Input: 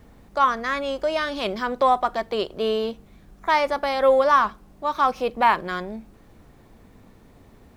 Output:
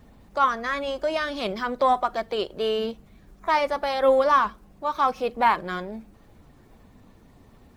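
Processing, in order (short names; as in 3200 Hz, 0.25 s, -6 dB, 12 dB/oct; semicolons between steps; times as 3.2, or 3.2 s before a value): bin magnitudes rounded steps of 15 dB; gain -1.5 dB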